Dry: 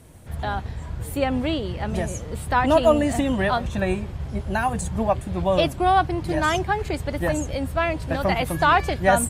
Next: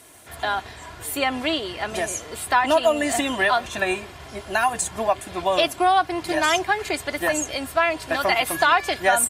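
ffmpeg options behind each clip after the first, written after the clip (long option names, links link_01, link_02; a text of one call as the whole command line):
ffmpeg -i in.wav -af "highpass=frequency=1200:poles=1,aecho=1:1:2.9:0.43,acompressor=threshold=-24dB:ratio=2.5,volume=8dB" out.wav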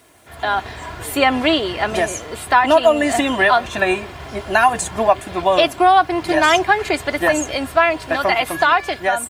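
ffmpeg -i in.wav -af "highshelf=frequency=4700:gain=-9,dynaudnorm=framelen=150:gausssize=7:maxgain=11.5dB,acrusher=bits=8:mix=0:aa=0.5" out.wav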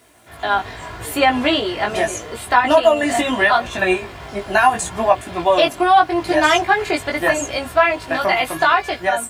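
ffmpeg -i in.wav -af "flanger=delay=16.5:depth=3.6:speed=0.78,volume=2.5dB" out.wav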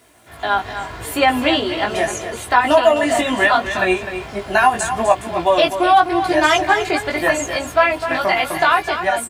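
ffmpeg -i in.wav -af "aecho=1:1:254:0.316" out.wav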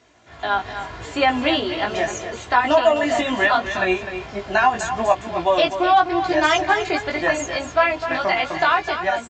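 ffmpeg -i in.wav -af "aresample=16000,aresample=44100,volume=-3dB" out.wav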